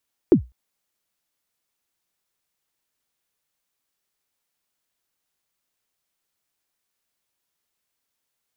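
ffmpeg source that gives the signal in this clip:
-f lavfi -i "aevalsrc='0.562*pow(10,-3*t/0.23)*sin(2*PI*(410*0.1/log(61/410)*(exp(log(61/410)*min(t,0.1)/0.1)-1)+61*max(t-0.1,0)))':d=0.2:s=44100"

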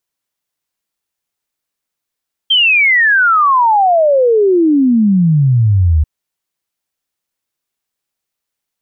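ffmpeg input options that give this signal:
-f lavfi -i "aevalsrc='0.447*clip(min(t,3.54-t)/0.01,0,1)*sin(2*PI*3200*3.54/log(73/3200)*(exp(log(73/3200)*t/3.54)-1))':d=3.54:s=44100"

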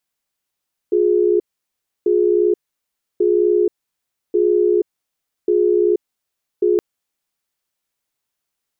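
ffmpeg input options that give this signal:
-f lavfi -i "aevalsrc='0.178*(sin(2*PI*356*t)+sin(2*PI*418*t))*clip(min(mod(t,1.14),0.48-mod(t,1.14))/0.005,0,1)':d=5.87:s=44100"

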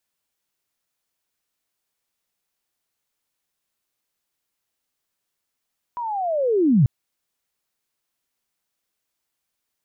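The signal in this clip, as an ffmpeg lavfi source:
-f lavfi -i "aevalsrc='pow(10,(-25.5+14.5*t/0.89)/20)*sin(2*PI*(990*t-880*t*t/(2*0.89)))':d=0.89:s=44100"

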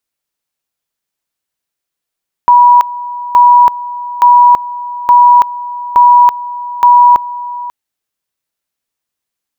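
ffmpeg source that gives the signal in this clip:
-f lavfi -i "aevalsrc='pow(10,(-1.5-17*gte(mod(t,0.87),0.33))/20)*sin(2*PI*972*t)':d=5.22:s=44100"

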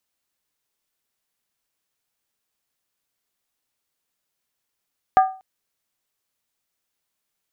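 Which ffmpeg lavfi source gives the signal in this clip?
-f lavfi -i "aevalsrc='0.422*pow(10,-3*t/0.36)*sin(2*PI*759*t)+0.15*pow(10,-3*t/0.285)*sin(2*PI*1209.8*t)+0.0531*pow(10,-3*t/0.246)*sin(2*PI*1621.2*t)+0.0188*pow(10,-3*t/0.238)*sin(2*PI*1742.7*t)+0.00668*pow(10,-3*t/0.221)*sin(2*PI*2013.6*t)':d=0.24:s=44100"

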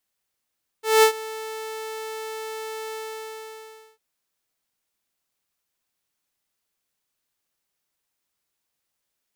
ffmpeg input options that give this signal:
-f lavfi -i "aevalsrc='0.376*(2*mod(440*t,1)-1)':d=3.15:s=44100,afade=t=in:d=0.198,afade=t=out:st=0.198:d=0.092:silence=0.1,afade=t=out:st=2.11:d=1.04"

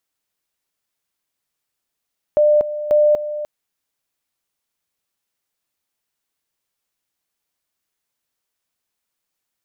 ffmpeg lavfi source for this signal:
-f lavfi -i "aevalsrc='pow(10,(-10-12.5*gte(mod(t,0.54),0.24))/20)*sin(2*PI*598*t)':d=1.08:s=44100"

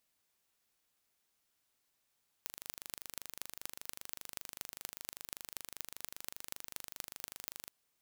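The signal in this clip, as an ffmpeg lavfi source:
-f lavfi -i "aevalsrc='0.266*eq(mod(n,1757),0)*(0.5+0.5*eq(mod(n,10542),0))':d=5.24:s=44100"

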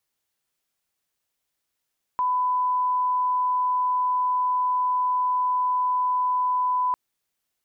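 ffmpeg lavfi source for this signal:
-f lavfi -i "sine=f=1000:d=4.75:r=44100,volume=-1.94dB"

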